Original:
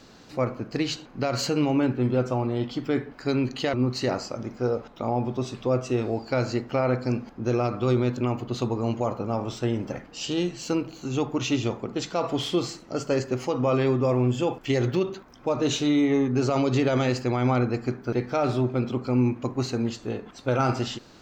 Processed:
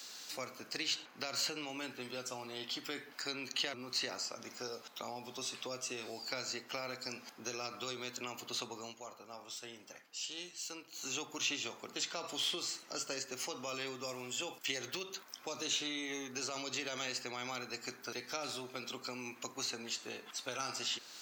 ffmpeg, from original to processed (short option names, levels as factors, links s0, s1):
-filter_complex "[0:a]asplit=3[s0][s1][s2];[s0]atrim=end=8.94,asetpts=PTS-STARTPTS,afade=t=out:st=8.76:d=0.18:silence=0.251189[s3];[s1]atrim=start=8.94:end=10.91,asetpts=PTS-STARTPTS,volume=0.251[s4];[s2]atrim=start=10.91,asetpts=PTS-STARTPTS,afade=t=in:d=0.18:silence=0.251189[s5];[s3][s4][s5]concat=n=3:v=0:a=1,highpass=97,acrossover=split=330|3300[s6][s7][s8];[s6]acompressor=threshold=0.0251:ratio=4[s9];[s7]acompressor=threshold=0.0178:ratio=4[s10];[s8]acompressor=threshold=0.00282:ratio=4[s11];[s9][s10][s11]amix=inputs=3:normalize=0,aderivative,volume=3.76"